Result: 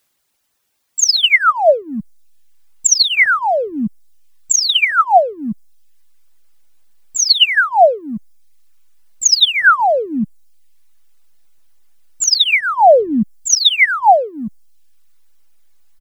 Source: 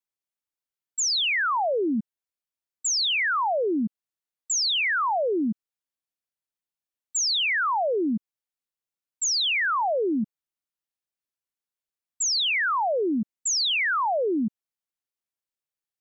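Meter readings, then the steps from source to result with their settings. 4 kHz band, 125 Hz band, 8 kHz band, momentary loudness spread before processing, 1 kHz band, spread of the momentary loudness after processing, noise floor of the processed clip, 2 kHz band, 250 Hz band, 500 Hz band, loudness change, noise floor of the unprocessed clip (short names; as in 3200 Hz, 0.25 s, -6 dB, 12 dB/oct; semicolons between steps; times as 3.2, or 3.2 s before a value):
+11.0 dB, +9.5 dB, n/a, 9 LU, +12.5 dB, 16 LU, -67 dBFS, +11.0 dB, +4.5 dB, +11.5 dB, +11.5 dB, under -85 dBFS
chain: phaser 0.31 Hz, delay 1.7 ms, feedback 62%; comb 1.4 ms, depth 78%; backlash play -41.5 dBFS; requantised 12-bit, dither triangular; reverb removal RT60 0.85 s; gain +6.5 dB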